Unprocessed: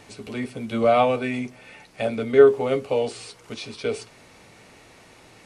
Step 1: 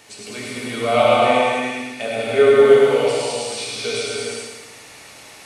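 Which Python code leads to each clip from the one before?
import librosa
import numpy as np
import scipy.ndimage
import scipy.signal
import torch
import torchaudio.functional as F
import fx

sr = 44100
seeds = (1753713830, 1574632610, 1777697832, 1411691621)

y = fx.tilt_eq(x, sr, slope=2.5)
y = fx.echo_feedback(y, sr, ms=107, feedback_pct=50, wet_db=-4)
y = fx.rev_gated(y, sr, seeds[0], gate_ms=470, shape='flat', drr_db=-5.5)
y = y * librosa.db_to_amplitude(-1.5)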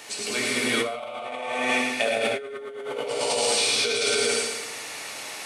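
y = fx.highpass(x, sr, hz=420.0, slope=6)
y = fx.over_compress(y, sr, threshold_db=-28.0, ratio=-1.0)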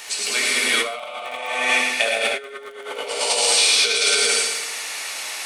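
y = fx.highpass(x, sr, hz=1200.0, slope=6)
y = fx.dmg_crackle(y, sr, seeds[1], per_s=17.0, level_db=-37.0)
y = y * librosa.db_to_amplitude(7.5)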